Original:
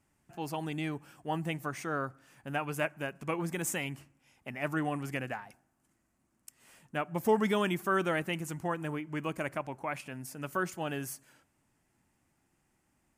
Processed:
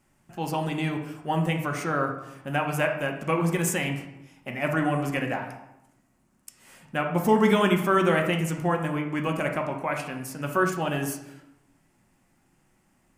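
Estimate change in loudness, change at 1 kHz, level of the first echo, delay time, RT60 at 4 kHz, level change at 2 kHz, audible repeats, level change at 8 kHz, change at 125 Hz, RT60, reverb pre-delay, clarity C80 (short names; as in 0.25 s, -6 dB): +8.0 dB, +8.0 dB, none, none, 0.60 s, +7.5 dB, none, +6.0 dB, +10.0 dB, 0.90 s, 4 ms, 9.5 dB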